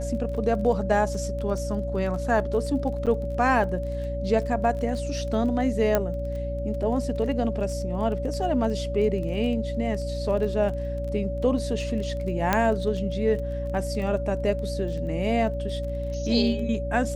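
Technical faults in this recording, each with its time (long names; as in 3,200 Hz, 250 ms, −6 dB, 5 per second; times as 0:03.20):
surface crackle 17 per second −33 dBFS
mains hum 60 Hz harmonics 5 −31 dBFS
whistle 570 Hz −31 dBFS
0:03.06–0:03.07: drop-out 7.4 ms
0:05.95: click −8 dBFS
0:12.53: click −7 dBFS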